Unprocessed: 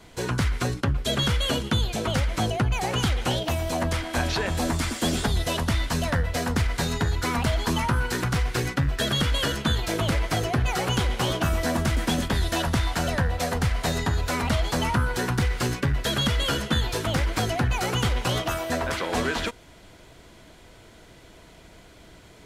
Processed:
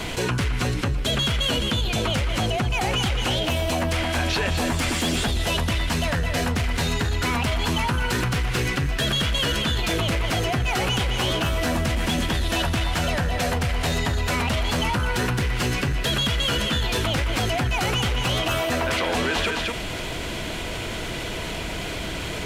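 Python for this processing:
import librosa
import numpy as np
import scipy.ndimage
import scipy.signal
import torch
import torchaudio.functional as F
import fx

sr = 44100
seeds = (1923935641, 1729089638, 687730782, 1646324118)

y = fx.peak_eq(x, sr, hz=2700.0, db=6.5, octaves=0.68)
y = 10.0 ** (-18.0 / 20.0) * np.tanh(y / 10.0 ** (-18.0 / 20.0))
y = y + 10.0 ** (-8.5 / 20.0) * np.pad(y, (int(214 * sr / 1000.0), 0))[:len(y)]
y = fx.env_flatten(y, sr, amount_pct=70)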